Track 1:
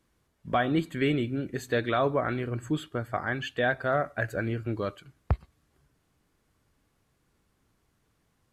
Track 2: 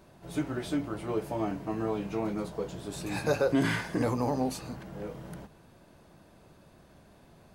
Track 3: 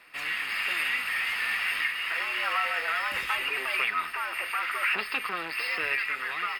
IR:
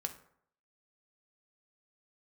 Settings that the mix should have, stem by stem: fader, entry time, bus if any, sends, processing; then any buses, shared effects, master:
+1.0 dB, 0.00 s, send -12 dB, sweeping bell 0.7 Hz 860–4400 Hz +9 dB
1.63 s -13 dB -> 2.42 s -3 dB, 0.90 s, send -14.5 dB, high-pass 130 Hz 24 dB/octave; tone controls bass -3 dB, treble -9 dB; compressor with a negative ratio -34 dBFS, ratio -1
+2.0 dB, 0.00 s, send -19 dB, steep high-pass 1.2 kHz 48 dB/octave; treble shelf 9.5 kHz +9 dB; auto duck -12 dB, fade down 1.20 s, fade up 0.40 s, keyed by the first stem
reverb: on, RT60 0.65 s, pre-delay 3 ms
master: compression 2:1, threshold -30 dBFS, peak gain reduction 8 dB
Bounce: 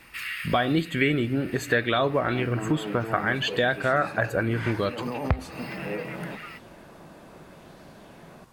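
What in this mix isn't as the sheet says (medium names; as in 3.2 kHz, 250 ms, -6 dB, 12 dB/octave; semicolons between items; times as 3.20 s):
stem 1 +1.0 dB -> +12.5 dB; stem 2 -13.0 dB -> -3.5 dB; stem 3: send off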